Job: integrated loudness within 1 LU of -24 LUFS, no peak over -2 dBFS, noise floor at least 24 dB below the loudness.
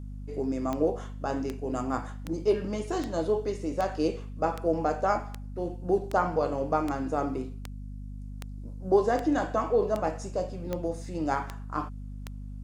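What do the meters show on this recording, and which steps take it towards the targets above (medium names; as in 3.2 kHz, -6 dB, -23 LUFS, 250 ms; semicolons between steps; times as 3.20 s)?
clicks found 16; hum 50 Hz; highest harmonic 250 Hz; hum level -37 dBFS; loudness -29.5 LUFS; peak level -10.5 dBFS; loudness target -24.0 LUFS
-> de-click; hum notches 50/100/150/200/250 Hz; trim +5.5 dB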